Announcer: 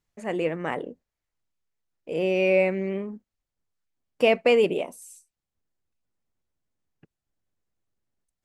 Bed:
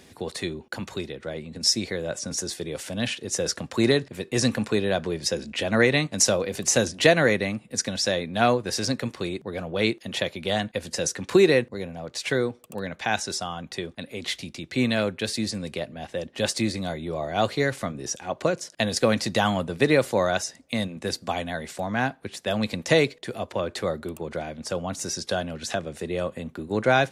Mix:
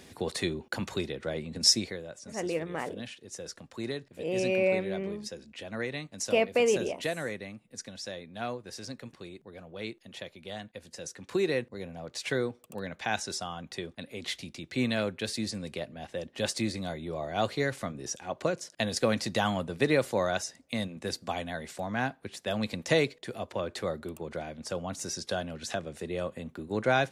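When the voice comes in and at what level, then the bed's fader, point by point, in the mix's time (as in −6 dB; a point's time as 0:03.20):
2.10 s, −5.5 dB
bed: 0:01.71 −0.5 dB
0:02.14 −15 dB
0:11.00 −15 dB
0:11.96 −5.5 dB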